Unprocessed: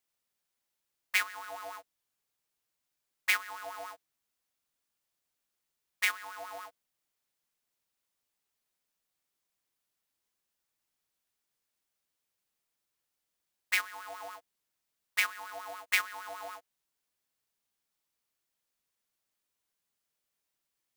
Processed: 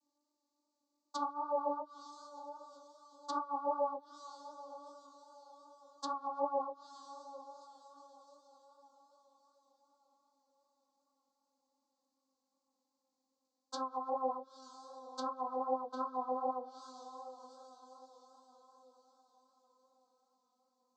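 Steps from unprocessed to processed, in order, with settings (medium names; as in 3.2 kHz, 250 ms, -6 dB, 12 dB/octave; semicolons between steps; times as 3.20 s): vocoder on a note that slides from D4, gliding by -3 st; elliptic band-stop 1.1–4.2 kHz, stop band 50 dB; echo that smears into a reverb 903 ms, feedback 41%, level -14.5 dB; chorus 2.6 Hz, delay 19 ms, depth 5 ms; low-pass that closes with the level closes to 1.3 kHz, closed at -43.5 dBFS; trim +9 dB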